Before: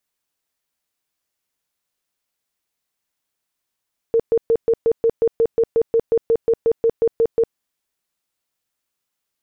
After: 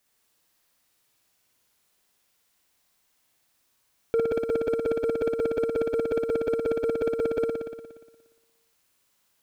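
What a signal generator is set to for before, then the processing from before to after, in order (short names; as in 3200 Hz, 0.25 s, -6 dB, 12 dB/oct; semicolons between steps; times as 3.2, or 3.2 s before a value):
tone bursts 458 Hz, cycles 26, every 0.18 s, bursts 19, -12 dBFS
negative-ratio compressor -23 dBFS, ratio -0.5; sample leveller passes 2; flutter echo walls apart 10.1 m, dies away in 1.3 s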